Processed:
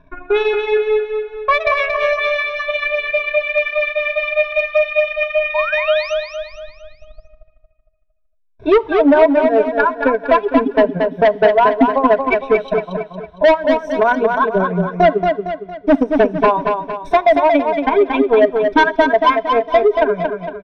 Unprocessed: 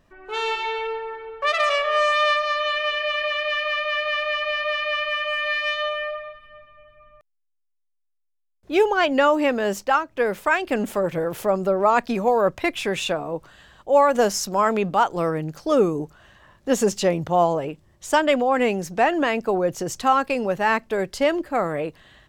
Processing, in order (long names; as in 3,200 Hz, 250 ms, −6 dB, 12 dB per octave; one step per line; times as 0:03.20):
gliding playback speed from 95% → 121%
reverb reduction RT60 2 s
EQ curve with evenly spaced ripples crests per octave 1.6, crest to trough 15 dB
harmonic and percussive parts rebalanced percussive −14 dB
in parallel at −2.5 dB: downward compressor, threshold −29 dBFS, peak gain reduction 22 dB
on the sum: transient designer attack +10 dB, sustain −11 dB
sound drawn into the spectrogram rise, 0:05.54–0:06.14, 880–6,400 Hz −26 dBFS
hard clipping −10 dBFS, distortion −5 dB
high-frequency loss of the air 310 metres
repeating echo 229 ms, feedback 44%, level −5 dB
on a send at −20.5 dB: convolution reverb RT60 1.0 s, pre-delay 3 ms
on the sum: level +4 dB